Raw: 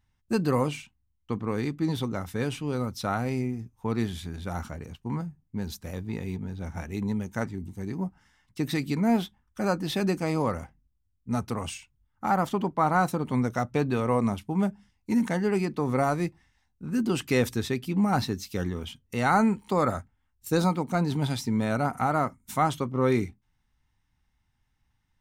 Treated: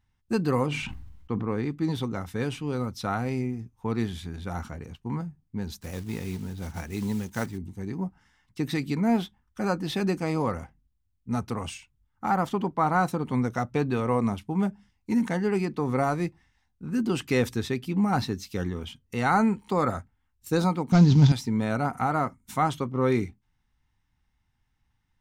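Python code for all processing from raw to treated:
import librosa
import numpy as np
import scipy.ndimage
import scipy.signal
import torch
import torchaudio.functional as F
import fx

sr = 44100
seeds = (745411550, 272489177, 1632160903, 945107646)

y = fx.chain(x, sr, fx.high_shelf(hz=3700.0, db=-11.0),
    fx.sustainer(db_per_s=39.0), at=(0.66, 1.71))
y = fx.chain(y, sr, fx.block_float(bits=5),
    fx.high_shelf(hz=4000.0, db=7.5), at=(5.81, 7.59))
y = fx.chain(y, sr, fx.cvsd(bps=32000),
    fx.bass_treble(bass_db=14, treble_db=13), at=(20.92, 21.32))
y = fx.high_shelf(y, sr, hz=7600.0, db=-5.5)
y = fx.notch(y, sr, hz=600.0, q=12.0)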